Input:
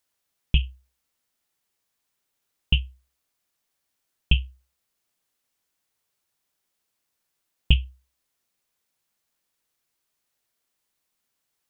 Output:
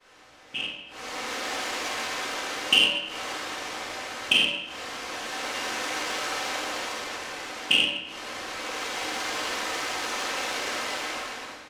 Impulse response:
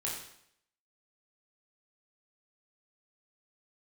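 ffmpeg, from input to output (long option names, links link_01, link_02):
-filter_complex "[0:a]aeval=exprs='val(0)+0.5*0.0447*sgn(val(0))':channel_layout=same,highpass=frequency=300:width=0.5412,highpass=frequency=300:width=1.3066,aecho=1:1:3.9:0.37,dynaudnorm=framelen=370:gausssize=5:maxgain=9dB,acrusher=bits=5:mix=0:aa=0.000001,agate=range=-33dB:threshold=-23dB:ratio=3:detection=peak[link_01];[1:a]atrim=start_sample=2205,asetrate=30429,aresample=44100[link_02];[link_01][link_02]afir=irnorm=-1:irlink=0,adynamicsmooth=sensitivity=0.5:basefreq=2900,volume=-2dB"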